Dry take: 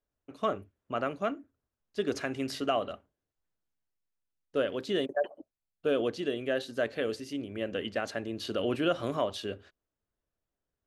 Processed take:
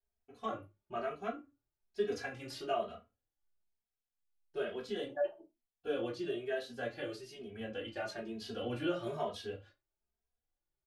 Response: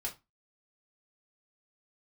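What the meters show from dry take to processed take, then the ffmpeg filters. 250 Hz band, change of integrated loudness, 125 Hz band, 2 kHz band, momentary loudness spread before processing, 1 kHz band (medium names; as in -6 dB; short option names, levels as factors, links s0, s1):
-8.0 dB, -7.0 dB, -6.5 dB, -6.5 dB, 8 LU, -6.0 dB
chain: -filter_complex "[1:a]atrim=start_sample=2205[s0];[0:a][s0]afir=irnorm=-1:irlink=0,asplit=2[s1][s2];[s2]adelay=2.8,afreqshift=1.1[s3];[s1][s3]amix=inputs=2:normalize=1,volume=0.631"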